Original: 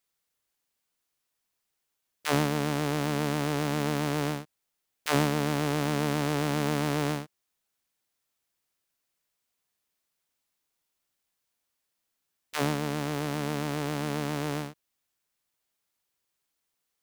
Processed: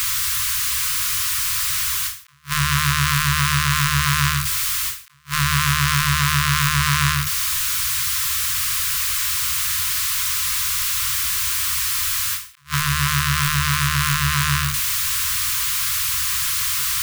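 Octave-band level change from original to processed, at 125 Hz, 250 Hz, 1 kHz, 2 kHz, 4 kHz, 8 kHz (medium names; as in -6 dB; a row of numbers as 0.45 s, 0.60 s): +11.0 dB, no reading, +10.5 dB, +16.0 dB, +18.5 dB, +23.0 dB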